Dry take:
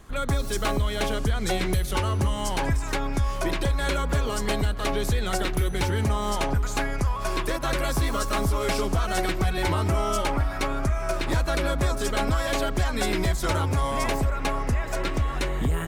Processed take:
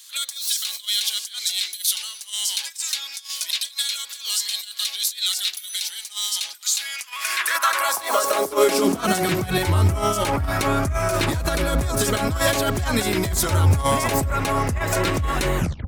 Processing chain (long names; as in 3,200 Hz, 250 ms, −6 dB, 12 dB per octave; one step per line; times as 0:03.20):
turntable brake at the end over 0.30 s
high-shelf EQ 7,000 Hz +10.5 dB
hum removal 135.6 Hz, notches 6
compressor whose output falls as the input rises −26 dBFS, ratio −0.5
high-pass filter sweep 3,900 Hz → 78 Hz, 0:06.77–0:09.80
level +6.5 dB